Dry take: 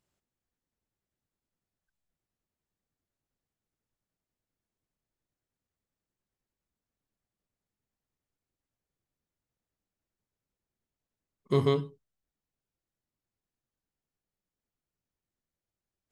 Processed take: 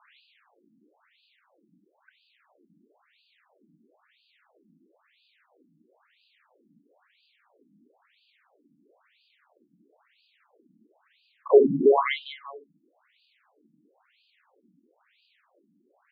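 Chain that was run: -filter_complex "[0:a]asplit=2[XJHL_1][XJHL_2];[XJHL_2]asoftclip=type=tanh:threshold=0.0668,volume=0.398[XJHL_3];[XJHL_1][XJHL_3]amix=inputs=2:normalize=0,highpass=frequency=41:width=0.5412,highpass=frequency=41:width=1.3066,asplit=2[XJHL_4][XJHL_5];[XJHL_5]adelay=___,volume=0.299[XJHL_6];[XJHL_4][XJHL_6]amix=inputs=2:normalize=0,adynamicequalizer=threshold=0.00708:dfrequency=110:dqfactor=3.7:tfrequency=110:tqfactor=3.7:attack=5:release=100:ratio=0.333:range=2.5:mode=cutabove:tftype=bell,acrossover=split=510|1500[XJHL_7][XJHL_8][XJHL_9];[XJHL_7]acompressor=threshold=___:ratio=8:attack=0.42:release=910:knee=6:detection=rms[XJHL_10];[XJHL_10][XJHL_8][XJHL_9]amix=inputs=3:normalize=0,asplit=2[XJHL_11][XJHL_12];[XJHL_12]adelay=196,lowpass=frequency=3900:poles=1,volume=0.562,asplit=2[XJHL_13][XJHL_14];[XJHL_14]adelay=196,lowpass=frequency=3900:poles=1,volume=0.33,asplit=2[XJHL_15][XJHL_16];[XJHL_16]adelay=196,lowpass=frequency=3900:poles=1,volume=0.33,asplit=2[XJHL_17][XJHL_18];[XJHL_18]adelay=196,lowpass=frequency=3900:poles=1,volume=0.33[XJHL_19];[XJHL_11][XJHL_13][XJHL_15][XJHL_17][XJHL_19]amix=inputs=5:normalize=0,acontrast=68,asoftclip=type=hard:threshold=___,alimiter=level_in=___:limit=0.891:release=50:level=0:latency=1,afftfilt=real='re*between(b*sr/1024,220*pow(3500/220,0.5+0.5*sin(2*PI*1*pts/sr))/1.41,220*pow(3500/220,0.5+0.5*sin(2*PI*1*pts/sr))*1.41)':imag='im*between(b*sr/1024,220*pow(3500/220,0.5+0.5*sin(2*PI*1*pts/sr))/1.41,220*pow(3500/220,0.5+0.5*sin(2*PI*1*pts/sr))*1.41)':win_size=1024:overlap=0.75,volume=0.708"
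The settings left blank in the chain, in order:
49, 0.0141, 0.119, 23.7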